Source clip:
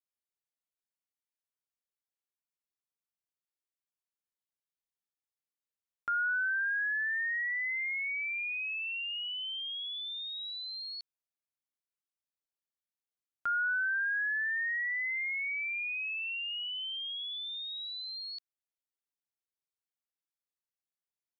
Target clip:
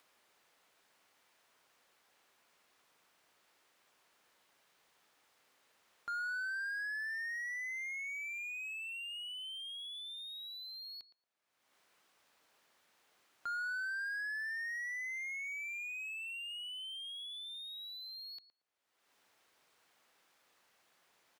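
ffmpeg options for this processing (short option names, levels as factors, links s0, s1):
-filter_complex "[0:a]acompressor=mode=upward:threshold=0.00282:ratio=2.5,asplit=2[s0][s1];[s1]adelay=115,lowpass=f=890:p=1,volume=0.316,asplit=2[s2][s3];[s3]adelay=115,lowpass=f=890:p=1,volume=0.34,asplit=2[s4][s5];[s5]adelay=115,lowpass=f=890:p=1,volume=0.34,asplit=2[s6][s7];[s7]adelay=115,lowpass=f=890:p=1,volume=0.34[s8];[s0][s2][s4][s6][s8]amix=inputs=5:normalize=0,asplit=2[s9][s10];[s10]highpass=f=720:p=1,volume=12.6,asoftclip=type=tanh:threshold=0.0531[s11];[s9][s11]amix=inputs=2:normalize=0,lowpass=f=1400:p=1,volume=0.501,volume=0.473"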